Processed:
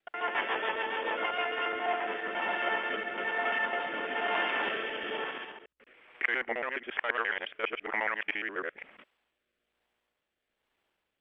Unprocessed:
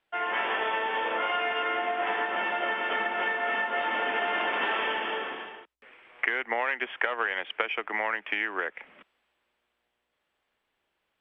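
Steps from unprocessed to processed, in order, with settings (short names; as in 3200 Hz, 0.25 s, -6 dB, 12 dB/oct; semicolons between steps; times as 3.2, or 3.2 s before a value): local time reversal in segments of 69 ms; rotary speaker horn 7 Hz, later 1.1 Hz, at 1.17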